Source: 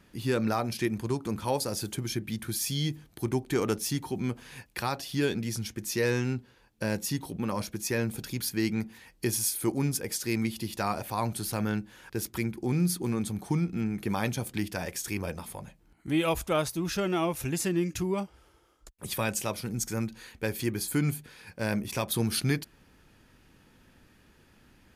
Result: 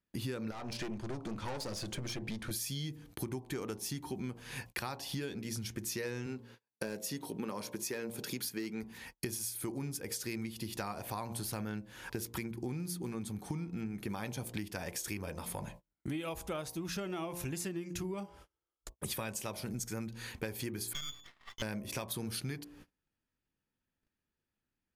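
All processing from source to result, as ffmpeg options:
ffmpeg -i in.wav -filter_complex "[0:a]asettb=1/sr,asplit=3[link_01][link_02][link_03];[link_01]atrim=end=0.514[link_04];[link_02]atrim=start=0.51:end=2.51,asetpts=PTS-STARTPTS,afade=type=in:duration=0.004:curve=qsin,afade=type=out:start_time=1.996:duration=0.004:curve=qsin,lowpass=6300,aeval=exprs='(tanh(44.7*val(0)+0.5)-tanh(0.5))/44.7':channel_layout=same[link_05];[link_03]atrim=start=2.506[link_06];[link_04][link_05]acrossfade=duration=0.004:curve1=hsin:curve2=qsin[link_07];[link_07][link_06]acrossfade=duration=0.004:curve1=qsin:curve2=hsin,asettb=1/sr,asplit=3[link_08][link_09][link_10];[link_08]atrim=end=6.264[link_11];[link_09]atrim=start=6.26:end=8.83,asetpts=PTS-STARTPTS,afade=type=in:duration=0.004:curve=qsin,afade=type=out:start_time=2.566:duration=0.004:curve=qsin,highpass=190,equalizer=frequency=430:width=7.1:gain=6.5,asoftclip=type=hard:threshold=-20.5dB[link_12];[link_10]atrim=start=8.826[link_13];[link_11][link_12]acrossfade=duration=0.004:curve1=hsin:curve2=qsin[link_14];[link_14][link_13]acrossfade=duration=0.004:curve1=qsin:curve2=hsin,asettb=1/sr,asplit=3[link_15][link_16][link_17];[link_15]atrim=end=20.934[link_18];[link_16]atrim=start=20.93:end=21.62,asetpts=PTS-STARTPTS,afade=type=in:duration=0.004:curve=qsin,afade=type=out:start_time=0.686:duration=0.004:curve=qsin,lowshelf=frequency=390:gain=-7,lowpass=frequency=3100:width_type=q:width=0.5098,lowpass=frequency=3100:width_type=q:width=0.6013,lowpass=frequency=3100:width_type=q:width=0.9,lowpass=frequency=3100:width_type=q:width=2.563,afreqshift=-3600,aeval=exprs='max(val(0),0)':channel_layout=same[link_19];[link_17]atrim=start=21.616[link_20];[link_18][link_19]acrossfade=duration=0.004:curve1=hsin:curve2=qsin[link_21];[link_21][link_20]acrossfade=duration=0.004:curve1=qsin:curve2=hsin,bandreject=frequency=58.38:width_type=h:width=4,bandreject=frequency=116.76:width_type=h:width=4,bandreject=frequency=175.14:width_type=h:width=4,bandreject=frequency=233.52:width_type=h:width=4,bandreject=frequency=291.9:width_type=h:width=4,bandreject=frequency=350.28:width_type=h:width=4,bandreject=frequency=408.66:width_type=h:width=4,bandreject=frequency=467.04:width_type=h:width=4,bandreject=frequency=525.42:width_type=h:width=4,bandreject=frequency=583.8:width_type=h:width=4,bandreject=frequency=642.18:width_type=h:width=4,bandreject=frequency=700.56:width_type=h:width=4,bandreject=frequency=758.94:width_type=h:width=4,bandreject=frequency=817.32:width_type=h:width=4,bandreject=frequency=875.7:width_type=h:width=4,bandreject=frequency=934.08:width_type=h:width=4,bandreject=frequency=992.46:width_type=h:width=4,bandreject=frequency=1050.84:width_type=h:width=4,bandreject=frequency=1109.22:width_type=h:width=4,agate=range=-34dB:threshold=-53dB:ratio=16:detection=peak,acompressor=threshold=-40dB:ratio=12,volume=4.5dB" out.wav

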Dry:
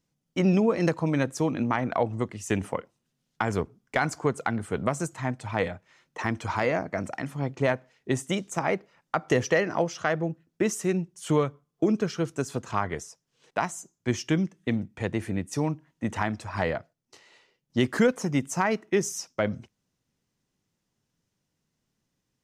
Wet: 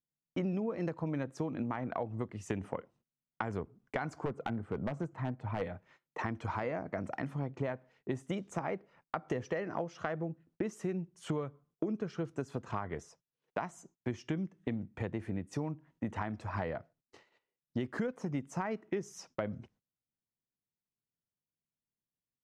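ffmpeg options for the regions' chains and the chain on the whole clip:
ffmpeg -i in.wav -filter_complex "[0:a]asettb=1/sr,asplit=3[link_01][link_02][link_03];[link_01]atrim=end=4.254[link_04];[link_02]atrim=start=4.25:end=5.62,asetpts=PTS-STARTPTS,afade=type=in:duration=0.004:curve=qsin,afade=type=out:start_time=1.366:duration=0.004:curve=qsin,lowpass=frequency=1400:poles=1,aeval=exprs='0.1*(abs(mod(val(0)/0.1+3,4)-2)-1)':channel_layout=same[link_05];[link_03]atrim=start=5.616[link_06];[link_04][link_05]acrossfade=duration=0.004:curve1=hsin:curve2=qsin[link_07];[link_07][link_06]acrossfade=duration=0.004:curve1=qsin:curve2=hsin,lowpass=frequency=1500:poles=1,agate=range=-21dB:threshold=-59dB:ratio=16:detection=peak,acompressor=threshold=-33dB:ratio=5" out.wav

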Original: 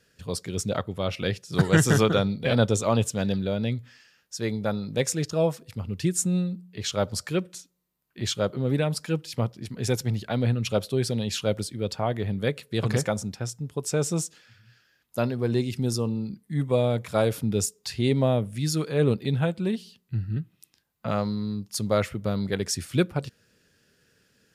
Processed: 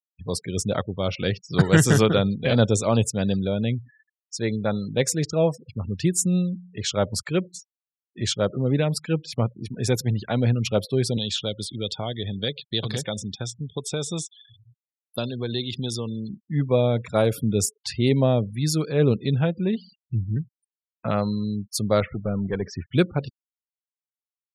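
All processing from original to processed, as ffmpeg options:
ffmpeg -i in.wav -filter_complex "[0:a]asettb=1/sr,asplit=3[link_01][link_02][link_03];[link_01]atrim=end=11.174[link_04];[link_02]atrim=start=11.17:end=16.45,asetpts=PTS-STARTPTS,afade=type=in:duration=0.004:curve=qsin,afade=type=out:start_time=5.276:duration=0.004:curve=qsin,acrossover=split=670|1700|3900[link_05][link_06][link_07][link_08];[link_05]acompressor=threshold=-31dB:ratio=3[link_09];[link_06]acompressor=threshold=-44dB:ratio=3[link_10];[link_07]acompressor=threshold=-47dB:ratio=3[link_11];[link_08]acompressor=threshold=-37dB:ratio=3[link_12];[link_09][link_10][link_11][link_12]amix=inputs=4:normalize=0,equalizer=frequency=3500:width=4.1:gain=14[link_13];[link_03]atrim=start=16.446[link_14];[link_04][link_13]acrossfade=duration=0.004:curve1=hsin:curve2=qsin[link_15];[link_15][link_14]acrossfade=duration=0.004:curve1=qsin:curve2=hsin,asettb=1/sr,asplit=3[link_16][link_17][link_18];[link_16]atrim=end=22.004[link_19];[link_17]atrim=start=22:end=22.93,asetpts=PTS-STARTPTS,afade=type=in:duration=0.004:curve=qsin,afade=type=out:start_time=0.926:duration=0.004:curve=qsin,lowpass=2700,aeval=exprs='(tanh(7.94*val(0)+0.2)-tanh(0.2))/7.94':channel_layout=same[link_20];[link_18]atrim=start=22.926[link_21];[link_19][link_20]acrossfade=duration=0.004:curve1=hsin:curve2=qsin[link_22];[link_22][link_21]acrossfade=duration=0.004:curve1=qsin:curve2=hsin,afftfilt=real='re*gte(hypot(re,im),0.01)':imag='im*gte(hypot(re,im),0.01)':win_size=1024:overlap=0.75,adynamicequalizer=threshold=0.00891:dfrequency=1200:dqfactor=0.86:tfrequency=1200:tqfactor=0.86:attack=5:release=100:ratio=0.375:range=2:mode=cutabove:tftype=bell,volume=3dB" out.wav

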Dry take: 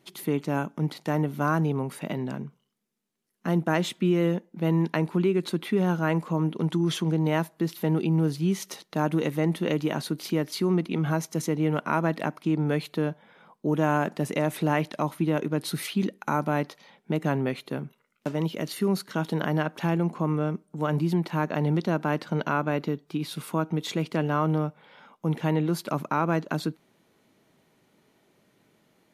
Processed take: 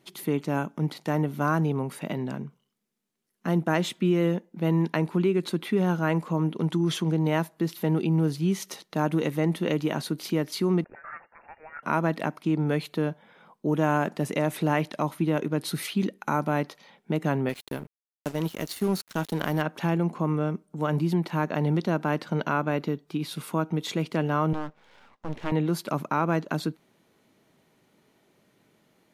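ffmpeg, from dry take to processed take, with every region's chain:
ffmpeg -i in.wav -filter_complex "[0:a]asettb=1/sr,asplit=3[link_01][link_02][link_03];[link_01]atrim=end=10.844[link_04];[link_02]atrim=start=10.84:end=11.83,asetpts=PTS-STARTPTS,afade=type=in:duration=0.004:curve=qsin,afade=type=out:start_time=0.986:duration=0.004:curve=qsin,highpass=frequency=1100:width=0.5412,highpass=frequency=1100:width=1.3066,volume=34dB,asoftclip=hard,volume=-34dB,lowpass=frequency=2400:width_type=q:width=0.5098,lowpass=frequency=2400:width_type=q:width=0.6013,lowpass=frequency=2400:width_type=q:width=0.9,lowpass=frequency=2400:width_type=q:width=2.563,afreqshift=-2800[link_05];[link_03]atrim=start=11.826[link_06];[link_04][link_05]acrossfade=duration=0.004:curve1=hsin:curve2=qsin[link_07];[link_07][link_06]acrossfade=duration=0.004:curve1=qsin:curve2=hsin,asettb=1/sr,asplit=3[link_08][link_09][link_10];[link_08]atrim=end=17.494[link_11];[link_09]atrim=start=17.49:end=19.62,asetpts=PTS-STARTPTS,afade=type=in:duration=0.004:curve=qsin,afade=type=out:start_time=2.126:duration=0.004:curve=qsin,acrossover=split=7300[link_12][link_13];[link_13]acompressor=threshold=-49dB:ratio=4:attack=1:release=60[link_14];[link_12][link_14]amix=inputs=2:normalize=0,aemphasis=mode=production:type=50kf,aeval=exprs='sgn(val(0))*max(abs(val(0))-0.0119,0)':channel_layout=same[link_15];[link_10]atrim=start=19.616[link_16];[link_11][link_15]acrossfade=duration=0.004:curve1=hsin:curve2=qsin[link_17];[link_17][link_16]acrossfade=duration=0.004:curve1=qsin:curve2=hsin,asettb=1/sr,asplit=3[link_18][link_19][link_20];[link_18]atrim=end=24.534[link_21];[link_19]atrim=start=24.53:end=25.52,asetpts=PTS-STARTPTS,afade=type=in:duration=0.004:curve=qsin,afade=type=out:start_time=0.986:duration=0.004:curve=qsin,highpass=160,lowpass=5600,aeval=exprs='max(val(0),0)':channel_layout=same[link_22];[link_20]atrim=start=25.516[link_23];[link_21][link_22]acrossfade=duration=0.004:curve1=hsin:curve2=qsin[link_24];[link_24][link_23]acrossfade=duration=0.004:curve1=qsin:curve2=hsin" out.wav

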